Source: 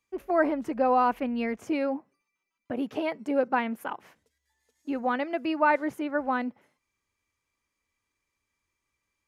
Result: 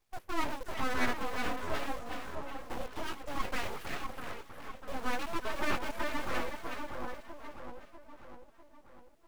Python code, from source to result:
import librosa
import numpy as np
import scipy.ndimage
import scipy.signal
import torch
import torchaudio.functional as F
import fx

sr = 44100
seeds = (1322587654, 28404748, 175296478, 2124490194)

p1 = fx.dmg_noise_colour(x, sr, seeds[0], colour='pink', level_db=-69.0)
p2 = fx.chorus_voices(p1, sr, voices=6, hz=0.41, base_ms=18, depth_ms=3.0, mix_pct=45)
p3 = fx.quant_companded(p2, sr, bits=2)
p4 = p2 + (p3 * 10.0 ** (-11.0 / 20.0))
p5 = fx.echo_split(p4, sr, split_hz=770.0, low_ms=648, high_ms=366, feedback_pct=52, wet_db=-5.0)
p6 = np.abs(p5)
y = p6 * 10.0 ** (-5.0 / 20.0)